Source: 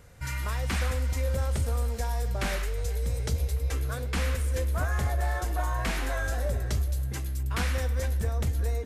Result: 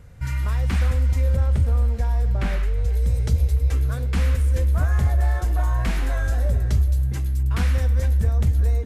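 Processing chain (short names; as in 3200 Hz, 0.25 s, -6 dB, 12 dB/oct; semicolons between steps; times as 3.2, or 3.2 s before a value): tone controls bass +9 dB, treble -4 dB, from 1.35 s treble -10 dB, from 2.92 s treble -2 dB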